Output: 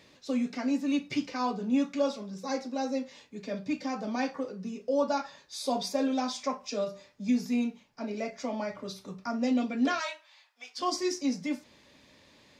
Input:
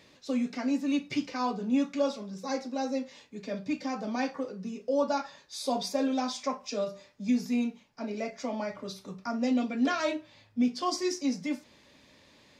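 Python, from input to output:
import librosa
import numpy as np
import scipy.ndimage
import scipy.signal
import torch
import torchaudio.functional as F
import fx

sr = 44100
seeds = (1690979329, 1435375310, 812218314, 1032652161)

y = fx.highpass(x, sr, hz=830.0, slope=24, at=(9.99, 10.78), fade=0.02)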